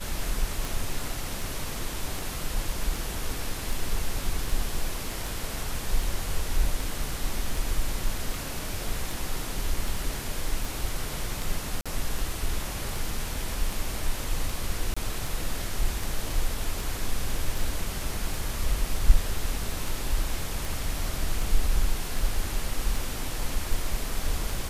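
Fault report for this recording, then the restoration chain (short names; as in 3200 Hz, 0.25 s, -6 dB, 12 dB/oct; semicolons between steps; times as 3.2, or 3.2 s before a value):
tick 78 rpm
11.81–11.86 gap 46 ms
14.94–14.96 gap 25 ms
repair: de-click; interpolate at 11.81, 46 ms; interpolate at 14.94, 25 ms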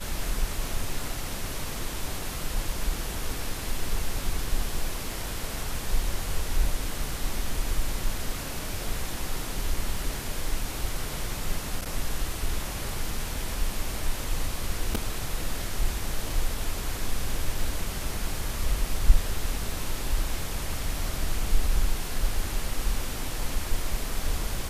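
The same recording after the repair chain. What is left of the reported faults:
none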